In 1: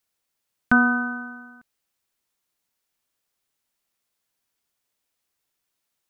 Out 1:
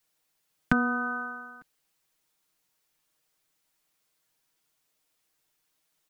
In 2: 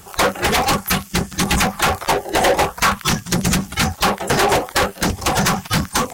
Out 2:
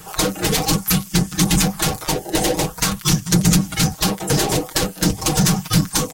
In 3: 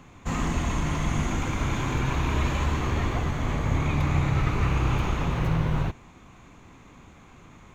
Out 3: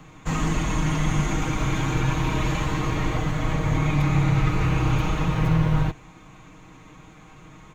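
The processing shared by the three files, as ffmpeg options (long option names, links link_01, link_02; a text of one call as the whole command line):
ffmpeg -i in.wav -filter_complex "[0:a]aecho=1:1:6.4:0.71,acrossover=split=430|3700[link_01][link_02][link_03];[link_02]acompressor=threshold=-29dB:ratio=6[link_04];[link_01][link_04][link_03]amix=inputs=3:normalize=0,volume=1.5dB" out.wav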